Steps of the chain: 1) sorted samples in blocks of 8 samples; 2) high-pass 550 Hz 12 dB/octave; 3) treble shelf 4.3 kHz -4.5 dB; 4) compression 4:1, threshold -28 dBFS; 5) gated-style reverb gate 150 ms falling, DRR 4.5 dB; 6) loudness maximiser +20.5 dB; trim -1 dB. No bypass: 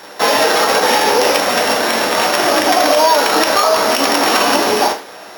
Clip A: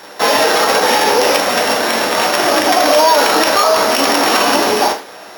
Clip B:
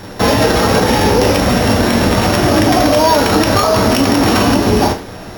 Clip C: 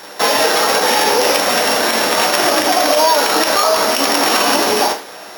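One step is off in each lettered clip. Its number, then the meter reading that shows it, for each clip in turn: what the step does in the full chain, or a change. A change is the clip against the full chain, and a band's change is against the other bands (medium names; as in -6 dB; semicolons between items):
4, mean gain reduction 1.5 dB; 2, 125 Hz band +24.0 dB; 3, 8 kHz band +3.0 dB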